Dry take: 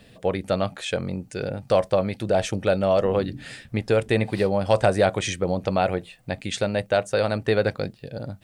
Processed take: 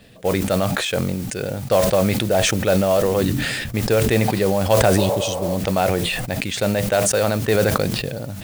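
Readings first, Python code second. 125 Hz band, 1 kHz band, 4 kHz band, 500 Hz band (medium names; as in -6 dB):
+6.0 dB, +3.5 dB, +8.0 dB, +3.0 dB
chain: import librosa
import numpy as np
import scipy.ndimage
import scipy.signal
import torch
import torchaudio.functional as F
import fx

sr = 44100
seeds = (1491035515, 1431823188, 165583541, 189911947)

y = fx.spec_repair(x, sr, seeds[0], start_s=5.0, length_s=0.52, low_hz=410.0, high_hz=2500.0, source='after')
y = fx.mod_noise(y, sr, seeds[1], snr_db=17)
y = fx.sustainer(y, sr, db_per_s=23.0)
y = F.gain(torch.from_numpy(y), 2.0).numpy()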